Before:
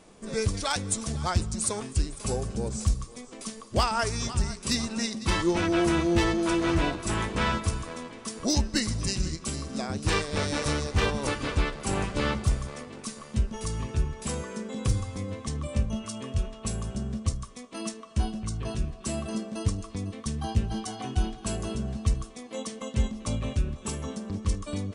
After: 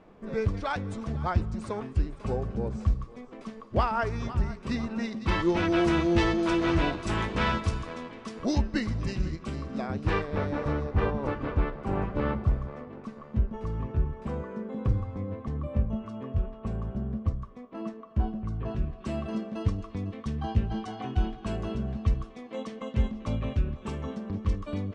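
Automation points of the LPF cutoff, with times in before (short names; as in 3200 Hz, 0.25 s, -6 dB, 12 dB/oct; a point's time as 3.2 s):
4.95 s 1900 Hz
5.76 s 4400 Hz
7.71 s 4400 Hz
8.78 s 2300 Hz
9.96 s 2300 Hz
10.53 s 1300 Hz
18.42 s 1300 Hz
19.13 s 2600 Hz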